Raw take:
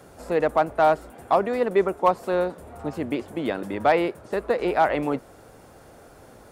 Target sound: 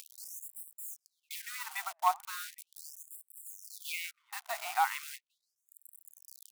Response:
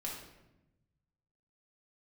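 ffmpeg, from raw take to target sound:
-filter_complex "[0:a]agate=range=0.316:threshold=0.0112:ratio=16:detection=peak,asplit=3[s0][s1][s2];[s0]afade=t=out:st=2.37:d=0.02[s3];[s1]bass=f=250:g=8,treble=f=4000:g=5,afade=t=in:st=2.37:d=0.02,afade=t=out:st=2.92:d=0.02[s4];[s2]afade=t=in:st=2.92:d=0.02[s5];[s3][s4][s5]amix=inputs=3:normalize=0,acompressor=mode=upward:threshold=0.0562:ratio=2.5,acrusher=bits=7:dc=4:mix=0:aa=0.000001,highshelf=f=4900:g=9,anlmdn=1.58,aeval=exprs='sgn(val(0))*max(abs(val(0))-0.015,0)':c=same,bandreject=f=1700:w=12,asplit=2[s6][s7];[s7]adelay=808,lowpass=f=850:p=1,volume=0.119,asplit=2[s8][s9];[s9]adelay=808,lowpass=f=850:p=1,volume=0.26[s10];[s6][s8][s10]amix=inputs=3:normalize=0,afftfilt=real='re*gte(b*sr/1024,620*pow(7700/620,0.5+0.5*sin(2*PI*0.38*pts/sr)))':imag='im*gte(b*sr/1024,620*pow(7700/620,0.5+0.5*sin(2*PI*0.38*pts/sr)))':win_size=1024:overlap=0.75,volume=0.501"

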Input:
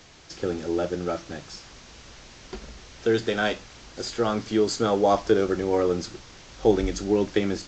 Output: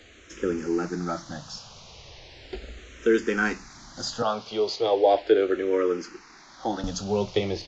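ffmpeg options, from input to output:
-filter_complex "[0:a]asettb=1/sr,asplit=3[s0][s1][s2];[s0]atrim=end=4.224[s3];[s1]atrim=start=4.22:end=6.84,asetpts=PTS-STARTPTS,afade=t=in:d=0.004:c=qsin,afade=t=out:st=2.616:d=0.004:c=qsin,acrossover=split=280 5900:gain=0.158 1 0.0794[s4][s5][s6];[s4][s5][s6]amix=inputs=3:normalize=0[s7];[s2]atrim=start=6.836[s8];[s3][s7]acrossfade=d=0.004:c1=hsin:c2=qsin[s9];[s9][s8]acrossfade=d=0.004:c1=qsin:c2=hsin,aresample=16000,aresample=44100,asplit=2[s10][s11];[s11]afreqshift=-0.37[s12];[s10][s12]amix=inputs=2:normalize=1,volume=1.41"

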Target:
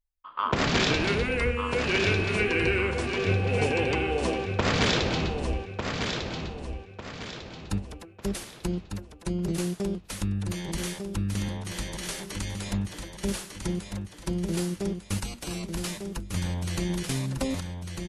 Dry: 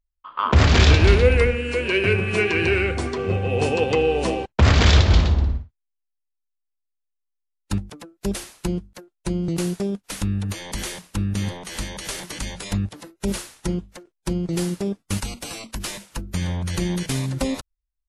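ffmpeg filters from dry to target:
-af "afftfilt=real='re*lt(hypot(re,im),1.26)':imag='im*lt(hypot(re,im),1.26)':win_size=1024:overlap=0.75,aecho=1:1:1199|2398|3597|4796|5995:0.501|0.19|0.0724|0.0275|0.0105,volume=0.562"

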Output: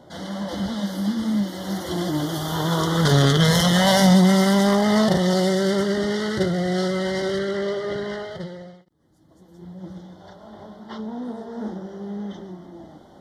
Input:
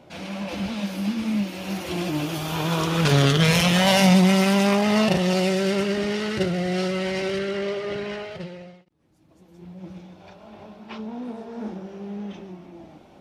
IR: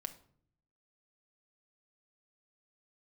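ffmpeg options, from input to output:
-af "asuperstop=centerf=2500:order=12:qfactor=2.8,acontrast=28,volume=0.708"

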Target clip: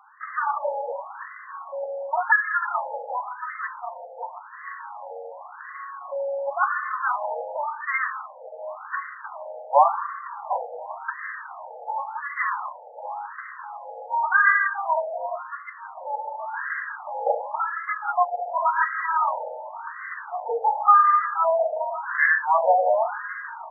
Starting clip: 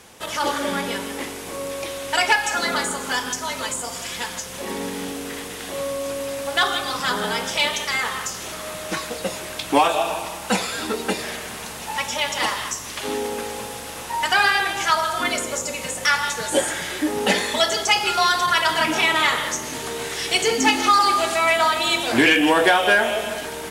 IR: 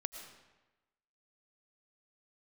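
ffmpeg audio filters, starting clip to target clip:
-filter_complex "[0:a]asplit=3[s0][s1][s2];[s0]afade=t=out:st=8.05:d=0.02[s3];[s1]asubboost=boost=11.5:cutoff=230,afade=t=in:st=8.05:d=0.02,afade=t=out:st=8.57:d=0.02[s4];[s2]afade=t=in:st=8.57:d=0.02[s5];[s3][s4][s5]amix=inputs=3:normalize=0,afftfilt=real='re*between(b*sr/1024,620*pow(1500/620,0.5+0.5*sin(2*PI*0.91*pts/sr))/1.41,620*pow(1500/620,0.5+0.5*sin(2*PI*0.91*pts/sr))*1.41)':imag='im*between(b*sr/1024,620*pow(1500/620,0.5+0.5*sin(2*PI*0.91*pts/sr))/1.41,620*pow(1500/620,0.5+0.5*sin(2*PI*0.91*pts/sr))*1.41)':win_size=1024:overlap=0.75,volume=1.26"

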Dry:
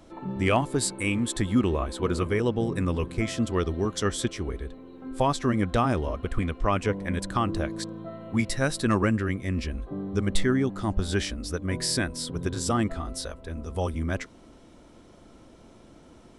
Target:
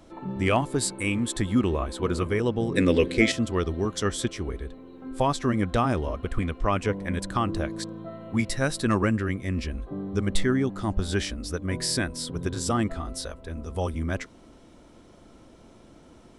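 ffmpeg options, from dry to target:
-filter_complex "[0:a]asettb=1/sr,asplit=3[s0][s1][s2];[s0]atrim=end=2.744[s3];[s1]atrim=start=2.74:end=3.32,asetpts=PTS-STARTPTS,afade=t=in:d=0.004:c=qsin,afade=t=out:st=0.576:d=0.004:c=qsin,equalizer=f=125:t=o:w=1:g=-4,equalizer=f=250:t=o:w=1:g=7,equalizer=f=500:t=o:w=1:g=11,equalizer=f=1000:t=o:w=1:g=-7,equalizer=f=2000:t=o:w=1:g=10,equalizer=f=4000:t=o:w=1:g=10,equalizer=f=8000:t=o:w=1:g=4[s4];[s2]atrim=start=3.316[s5];[s3][s4]acrossfade=d=0.004:c1=hsin:c2=qsin[s6];[s6][s5]acrossfade=d=0.004:c1=qsin:c2=hsin"

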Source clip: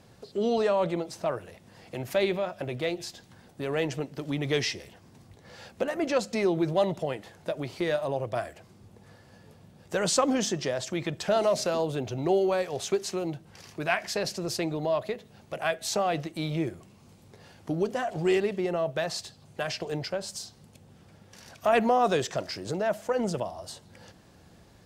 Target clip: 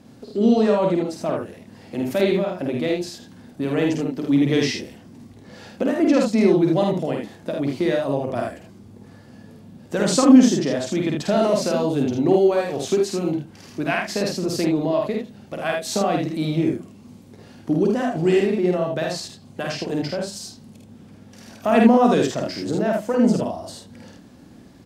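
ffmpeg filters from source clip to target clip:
-filter_complex "[0:a]equalizer=f=250:t=o:w=0.87:g=13.5,asplit=2[s0][s1];[s1]aecho=0:1:50|78:0.708|0.596[s2];[s0][s2]amix=inputs=2:normalize=0,volume=1.12"

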